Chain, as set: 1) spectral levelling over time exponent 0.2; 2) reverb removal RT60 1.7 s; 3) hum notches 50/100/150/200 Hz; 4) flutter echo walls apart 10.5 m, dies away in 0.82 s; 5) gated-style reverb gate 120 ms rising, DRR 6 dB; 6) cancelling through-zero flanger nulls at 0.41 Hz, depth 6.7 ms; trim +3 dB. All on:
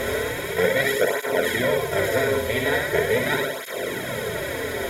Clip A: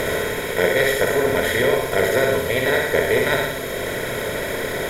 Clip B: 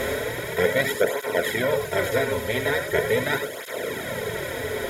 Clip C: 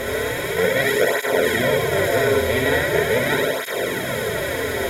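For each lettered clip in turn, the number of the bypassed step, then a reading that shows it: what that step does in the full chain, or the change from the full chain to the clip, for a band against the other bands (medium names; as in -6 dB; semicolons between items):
6, loudness change +3.0 LU; 4, crest factor change +2.0 dB; 2, loudness change +3.0 LU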